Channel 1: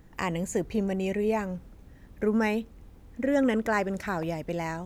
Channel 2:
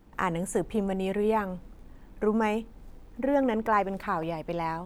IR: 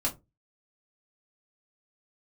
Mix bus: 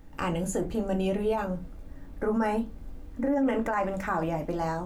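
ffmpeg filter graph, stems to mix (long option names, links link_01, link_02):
-filter_complex "[0:a]flanger=delay=9.9:depth=8:regen=74:speed=1.5:shape=triangular,volume=0dB,asplit=2[link_01][link_02];[link_02]volume=-9.5dB[link_03];[1:a]volume=-6dB,asplit=3[link_04][link_05][link_06];[link_05]volume=-5dB[link_07];[link_06]apad=whole_len=213886[link_08];[link_01][link_08]sidechaincompress=threshold=-38dB:ratio=8:attack=16:release=159[link_09];[2:a]atrim=start_sample=2205[link_10];[link_03][link_07]amix=inputs=2:normalize=0[link_11];[link_11][link_10]afir=irnorm=-1:irlink=0[link_12];[link_09][link_04][link_12]amix=inputs=3:normalize=0,alimiter=limit=-19dB:level=0:latency=1:release=16"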